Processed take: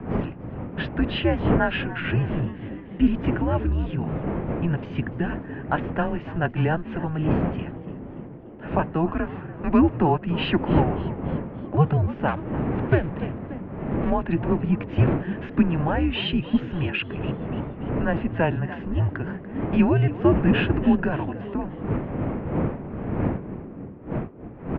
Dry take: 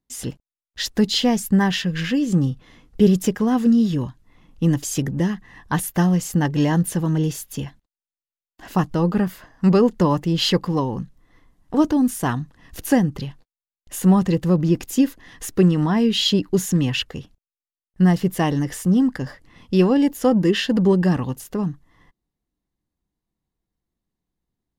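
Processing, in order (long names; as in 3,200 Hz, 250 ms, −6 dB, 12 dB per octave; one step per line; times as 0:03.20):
0:12.28–0:14.10: gap after every zero crossing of 0.13 ms
wind on the microphone 180 Hz −20 dBFS
0:14.87–0:15.59: leveller curve on the samples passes 1
on a send: echo with shifted repeats 290 ms, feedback 52%, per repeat +88 Hz, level −16.5 dB
on the sum: single-sideband voice off tune −160 Hz 300–2,800 Hz
level +1 dB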